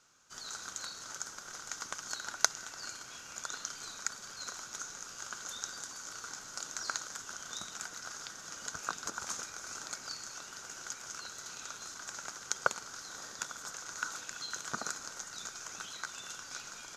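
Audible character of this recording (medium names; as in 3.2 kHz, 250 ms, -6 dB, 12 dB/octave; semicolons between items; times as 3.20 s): noise floor -49 dBFS; spectral tilt -1.5 dB/octave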